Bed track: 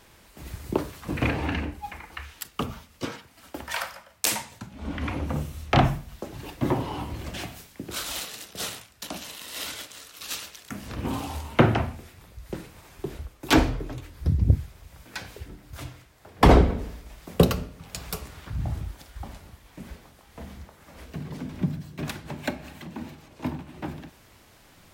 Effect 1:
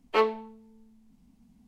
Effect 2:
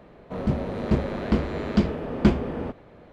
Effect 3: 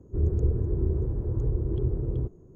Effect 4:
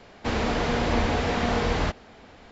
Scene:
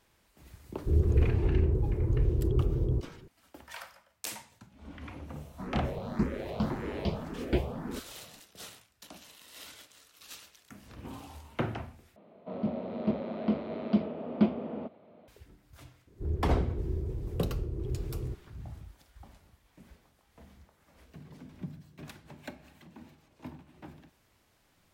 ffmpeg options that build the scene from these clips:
ffmpeg -i bed.wav -i cue0.wav -i cue1.wav -i cue2.wav -filter_complex "[3:a]asplit=2[link_01][link_02];[2:a]asplit=2[link_03][link_04];[0:a]volume=-14dB[link_05];[link_03]asplit=2[link_06][link_07];[link_07]afreqshift=1.8[link_08];[link_06][link_08]amix=inputs=2:normalize=1[link_09];[link_04]highpass=frequency=110:width=0.5412,highpass=frequency=110:width=1.3066,equalizer=frequency=130:width_type=q:width=4:gain=-9,equalizer=frequency=220:width_type=q:width=4:gain=7,equalizer=frequency=640:width_type=q:width=4:gain=8,equalizer=frequency=1700:width_type=q:width=4:gain=-9,lowpass=frequency=4200:width=0.5412,lowpass=frequency=4200:width=1.3066[link_10];[link_05]asplit=2[link_11][link_12];[link_11]atrim=end=12.164[link_13];[link_10]atrim=end=3.12,asetpts=PTS-STARTPTS,volume=-9.5dB[link_14];[link_12]atrim=start=15.276[link_15];[link_01]atrim=end=2.55,asetpts=PTS-STARTPTS,afade=type=in:duration=0.004:curve=hsin,afade=type=out:start_time=2.546:duration=0.004:curve=hsin,adelay=730[link_16];[link_09]atrim=end=3.12,asetpts=PTS-STARTPTS,volume=-4.5dB,afade=type=in:duration=0.004:curve=hsin,afade=type=out:start_time=3.116:duration=0.004:curve=hsin,adelay=5280[link_17];[link_02]atrim=end=2.55,asetpts=PTS-STARTPTS,volume=-7.5dB,afade=type=in:duration=0.004:curve=hsin,afade=type=out:start_time=2.546:duration=0.004:curve=hsin,adelay=16070[link_18];[link_13][link_14]acrossfade=duration=0.004:curve1=hsin:curve2=hsin[link_19];[link_19][link_15]acrossfade=duration=0.004:curve1=hsin:curve2=hsin[link_20];[link_20][link_16][link_17][link_18]amix=inputs=4:normalize=0" out.wav

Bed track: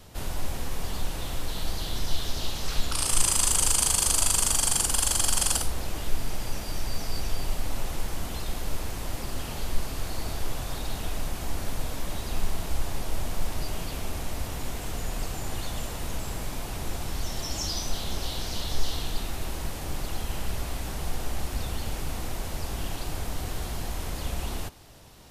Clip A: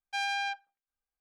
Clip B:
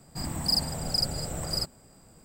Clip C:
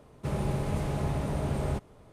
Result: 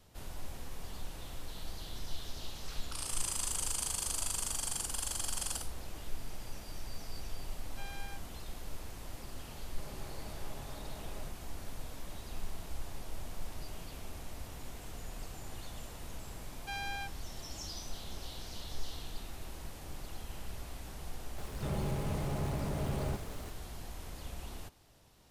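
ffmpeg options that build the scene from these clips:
ffmpeg -i bed.wav -i cue0.wav -i cue1.wav -i cue2.wav -filter_complex "[1:a]asplit=2[link_01][link_02];[3:a]asplit=2[link_03][link_04];[0:a]volume=-12.5dB[link_05];[link_03]highpass=frequency=410:poles=1[link_06];[link_04]aeval=exprs='val(0)+0.5*0.0126*sgn(val(0))':channel_layout=same[link_07];[link_01]atrim=end=1.2,asetpts=PTS-STARTPTS,volume=-17.5dB,afade=type=in:duration=0.004:curve=hsin,afade=type=out:start_time=1.196:duration=0.004:curve=hsin,adelay=7640[link_08];[link_06]atrim=end=2.12,asetpts=PTS-STARTPTS,volume=-14.5dB,afade=type=in:duration=0.004:curve=hsin,afade=type=out:start_time=2.116:duration=0.004:curve=hsin,adelay=9530[link_09];[link_02]atrim=end=1.2,asetpts=PTS-STARTPTS,volume=-8.5dB,afade=type=in:duration=0.004:curve=hsin,afade=type=out:start_time=1.196:duration=0.004:curve=hsin,adelay=16540[link_10];[link_07]atrim=end=2.12,asetpts=PTS-STARTPTS,volume=-6.5dB,afade=type=in:duration=0.004:curve=hsin,afade=type=out:start_time=2.116:duration=0.004:curve=hsin,adelay=21380[link_11];[link_05][link_08][link_09][link_10][link_11]amix=inputs=5:normalize=0" out.wav

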